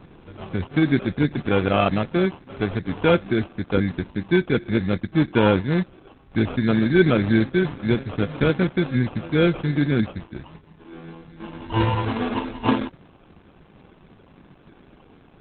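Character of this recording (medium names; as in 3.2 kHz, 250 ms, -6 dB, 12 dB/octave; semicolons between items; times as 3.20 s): aliases and images of a low sample rate 1.9 kHz, jitter 0%; Opus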